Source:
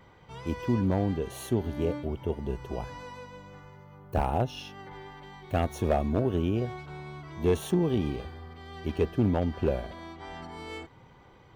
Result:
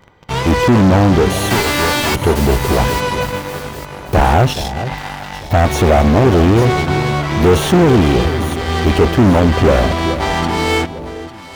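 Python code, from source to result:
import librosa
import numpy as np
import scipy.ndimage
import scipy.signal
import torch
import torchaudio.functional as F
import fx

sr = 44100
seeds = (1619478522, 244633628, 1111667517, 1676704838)

p1 = fx.envelope_flatten(x, sr, power=0.1, at=(1.49, 2.14), fade=0.02)
p2 = fx.fixed_phaser(p1, sr, hz=1900.0, stages=8, at=(4.53, 5.65))
p3 = fx.fuzz(p2, sr, gain_db=39.0, gate_db=-47.0)
p4 = p2 + (p3 * 10.0 ** (-3.0 / 20.0))
p5 = fx.echo_alternate(p4, sr, ms=425, hz=820.0, feedback_pct=57, wet_db=-11)
p6 = fx.slew_limit(p5, sr, full_power_hz=280.0)
y = p6 * 10.0 ** (5.5 / 20.0)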